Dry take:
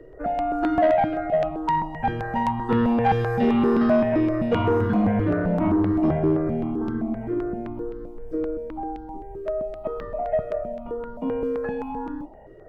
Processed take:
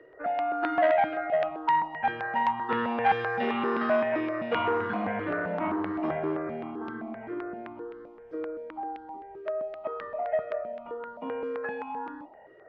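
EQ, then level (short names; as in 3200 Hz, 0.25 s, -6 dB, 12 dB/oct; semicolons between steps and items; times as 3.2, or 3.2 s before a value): band-pass 2000 Hz, Q 0.74; air absorption 110 m; +3.5 dB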